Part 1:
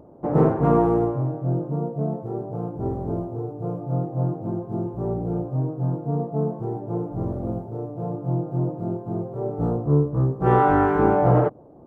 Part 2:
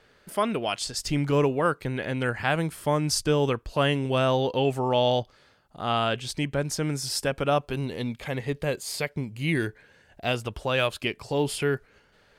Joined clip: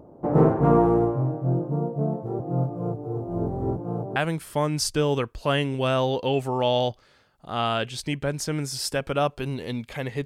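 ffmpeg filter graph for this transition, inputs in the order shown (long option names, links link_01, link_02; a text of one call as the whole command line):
ffmpeg -i cue0.wav -i cue1.wav -filter_complex "[0:a]apad=whole_dur=10.25,atrim=end=10.25,asplit=2[link_01][link_02];[link_01]atrim=end=2.402[link_03];[link_02]atrim=start=2.398:end=4.162,asetpts=PTS-STARTPTS,areverse[link_04];[1:a]atrim=start=2.468:end=8.56[link_05];[link_03][link_04]acrossfade=duration=0.004:curve1=hsin:curve2=hsin[link_06];[link_06][link_05]acrossfade=duration=0.004:curve1=hsin:curve2=hsin" out.wav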